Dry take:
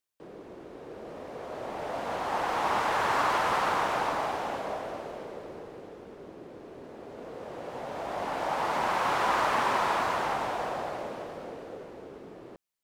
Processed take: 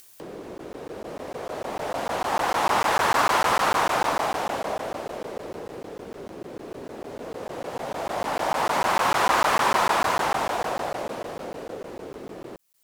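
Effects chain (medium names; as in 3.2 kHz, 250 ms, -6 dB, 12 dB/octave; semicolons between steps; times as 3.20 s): in parallel at -2 dB: upward compressor, threshold -34 dBFS; on the sum: treble shelf 5.2 kHz +9.5 dB; crackling interface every 0.15 s, samples 512, zero, from 0.58 s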